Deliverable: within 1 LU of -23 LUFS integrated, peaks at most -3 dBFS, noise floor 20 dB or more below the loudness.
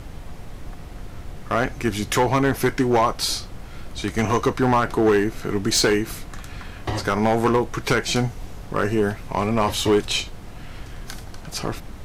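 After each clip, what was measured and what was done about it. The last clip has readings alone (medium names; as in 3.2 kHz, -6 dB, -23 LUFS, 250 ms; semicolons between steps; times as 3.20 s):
clipped samples 1.1%; clipping level -12.0 dBFS; noise floor -38 dBFS; noise floor target -42 dBFS; loudness -22.0 LUFS; peak level -12.0 dBFS; loudness target -23.0 LUFS
-> clip repair -12 dBFS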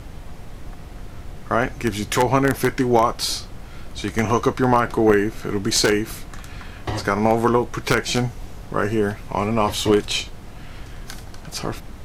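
clipped samples 0.0%; noise floor -38 dBFS; noise floor target -41 dBFS
-> noise print and reduce 6 dB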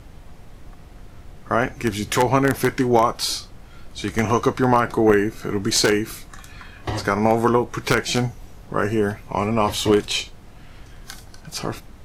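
noise floor -44 dBFS; loudness -21.0 LUFS; peak level -3.0 dBFS; loudness target -23.0 LUFS
-> trim -2 dB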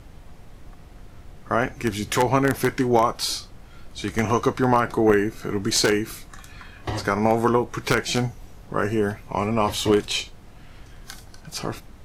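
loudness -23.0 LUFS; peak level -5.0 dBFS; noise floor -46 dBFS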